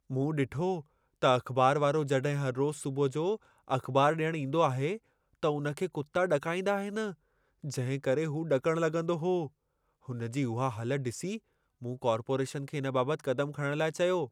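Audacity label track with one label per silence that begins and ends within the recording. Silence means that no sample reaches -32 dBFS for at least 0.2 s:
0.770000	1.220000	silence
3.350000	3.710000	silence
4.950000	5.430000	silence
7.090000	7.650000	silence
9.460000	10.100000	silence
11.360000	11.850000	silence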